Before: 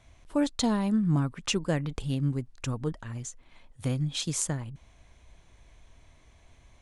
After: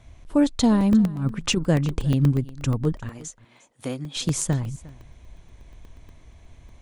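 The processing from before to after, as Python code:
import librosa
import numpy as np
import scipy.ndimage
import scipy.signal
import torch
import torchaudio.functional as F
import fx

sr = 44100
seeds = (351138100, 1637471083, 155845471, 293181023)

y = fx.low_shelf(x, sr, hz=440.0, db=7.5)
y = fx.over_compress(y, sr, threshold_db=-23.0, ratio=-0.5, at=(1.05, 1.56), fade=0.02)
y = fx.highpass(y, sr, hz=340.0, slope=12, at=(3.09, 4.16))
y = y + 10.0 ** (-21.0 / 20.0) * np.pad(y, (int(354 * sr / 1000.0), 0))[:len(y)]
y = fx.buffer_crackle(y, sr, first_s=0.81, period_s=0.12, block=64, kind='zero')
y = y * 10.0 ** (2.5 / 20.0)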